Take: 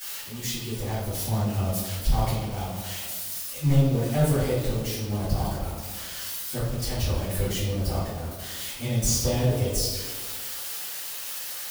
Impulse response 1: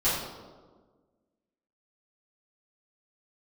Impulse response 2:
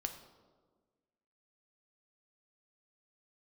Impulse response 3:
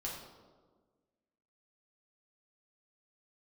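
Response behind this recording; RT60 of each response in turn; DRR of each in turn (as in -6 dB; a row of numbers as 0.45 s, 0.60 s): 1; 1.5 s, 1.5 s, 1.5 s; -13.5 dB, 5.5 dB, -4.5 dB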